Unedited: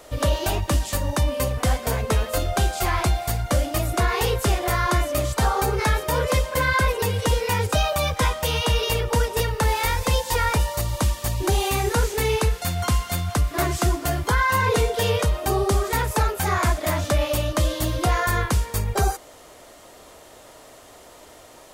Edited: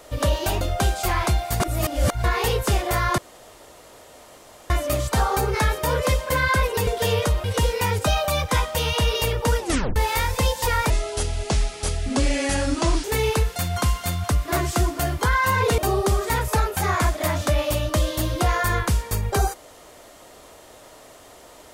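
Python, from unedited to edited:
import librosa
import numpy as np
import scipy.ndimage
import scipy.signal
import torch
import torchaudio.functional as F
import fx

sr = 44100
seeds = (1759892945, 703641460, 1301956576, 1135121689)

y = fx.edit(x, sr, fx.cut(start_s=0.61, length_s=1.77),
    fx.reverse_span(start_s=3.37, length_s=0.64),
    fx.insert_room_tone(at_s=4.95, length_s=1.52),
    fx.tape_stop(start_s=9.29, length_s=0.35),
    fx.speed_span(start_s=10.58, length_s=1.52, speed=0.71),
    fx.move(start_s=14.84, length_s=0.57, to_s=7.12), tone=tone)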